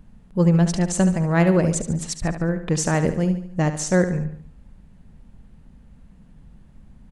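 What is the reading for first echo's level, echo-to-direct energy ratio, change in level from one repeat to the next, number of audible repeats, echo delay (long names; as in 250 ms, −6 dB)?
−10.5 dB, −9.5 dB, −6.5 dB, 4, 72 ms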